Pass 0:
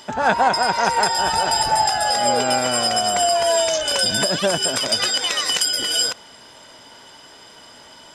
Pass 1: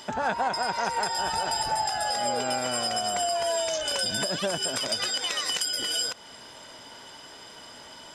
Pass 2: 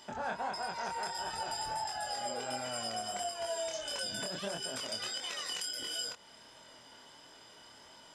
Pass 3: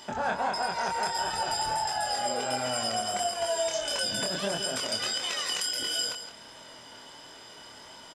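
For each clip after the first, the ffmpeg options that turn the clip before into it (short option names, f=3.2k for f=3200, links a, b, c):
-af "acompressor=threshold=-29dB:ratio=2,volume=-1.5dB"
-af "flanger=delay=22.5:depth=4.9:speed=1.5,volume=-7dB"
-af "aecho=1:1:166:0.299,volume=7.5dB"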